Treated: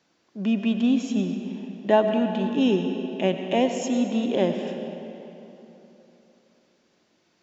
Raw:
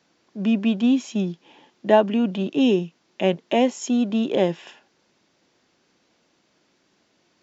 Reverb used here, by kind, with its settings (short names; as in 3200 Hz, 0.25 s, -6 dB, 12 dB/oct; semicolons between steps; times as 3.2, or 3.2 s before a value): digital reverb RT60 3.3 s, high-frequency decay 0.7×, pre-delay 55 ms, DRR 5.5 dB; gain -3 dB